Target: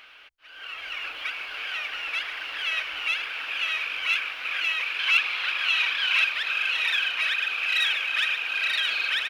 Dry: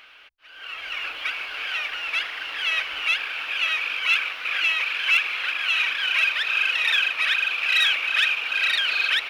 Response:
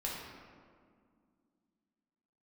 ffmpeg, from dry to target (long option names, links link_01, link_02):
-filter_complex "[0:a]asettb=1/sr,asplit=3[link_01][link_02][link_03];[link_01]atrim=end=4.994[link_04];[link_02]atrim=start=4.99:end=6.25,asetpts=PTS-STARTPTS,afade=type=in:duration=0.004:curve=qsin,afade=type=out:start_time=1.256:duration=0.004:curve=qsin,equalizer=frequency=125:width_type=o:width=1:gain=6,equalizer=frequency=1000:width_type=o:width=1:gain=4,equalizer=frequency=4000:width_type=o:width=1:gain=6[link_05];[link_03]atrim=start=6.246[link_06];[link_04][link_05]acrossfade=duration=0.004:curve1=hsin:curve2=qsin[link_07];[link_07][link_06]acrossfade=duration=0.004:curve1=qsin:curve2=hsin,asplit=2[link_08][link_09];[link_09]acompressor=threshold=-36dB:ratio=6,volume=-2.5dB[link_10];[link_08][link_10]amix=inputs=2:normalize=0,aecho=1:1:1026:0.473,volume=-5.5dB"